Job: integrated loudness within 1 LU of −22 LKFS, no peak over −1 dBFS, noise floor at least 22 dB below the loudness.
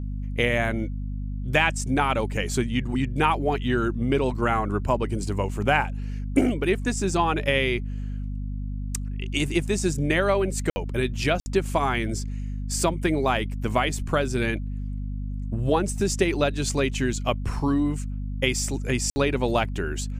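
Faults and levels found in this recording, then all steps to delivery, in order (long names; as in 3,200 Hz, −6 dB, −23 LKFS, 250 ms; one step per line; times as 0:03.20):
number of dropouts 3; longest dropout 60 ms; mains hum 50 Hz; hum harmonics up to 250 Hz; level of the hum −28 dBFS; integrated loudness −25.5 LKFS; sample peak −7.0 dBFS; target loudness −22.0 LKFS
→ repair the gap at 0:10.70/0:11.40/0:19.10, 60 ms
hum removal 50 Hz, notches 5
level +3.5 dB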